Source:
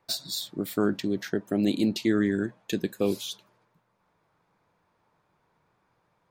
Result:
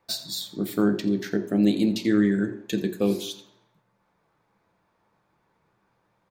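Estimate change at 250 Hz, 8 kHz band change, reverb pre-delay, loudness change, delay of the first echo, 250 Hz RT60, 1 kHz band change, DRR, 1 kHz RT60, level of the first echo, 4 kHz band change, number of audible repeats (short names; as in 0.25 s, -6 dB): +4.0 dB, +0.5 dB, 3 ms, +3.0 dB, 85 ms, 0.65 s, +0.5 dB, 5.5 dB, 0.60 s, -16.0 dB, +0.5 dB, 1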